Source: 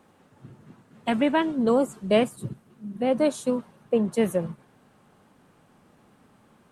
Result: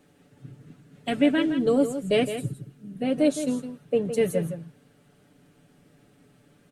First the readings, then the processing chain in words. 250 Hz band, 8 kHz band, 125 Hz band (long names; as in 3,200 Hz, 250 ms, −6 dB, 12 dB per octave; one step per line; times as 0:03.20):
+0.5 dB, +2.0 dB, +2.0 dB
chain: parametric band 990 Hz −13.5 dB 0.82 octaves
comb filter 6.9 ms
single-tap delay 163 ms −10 dB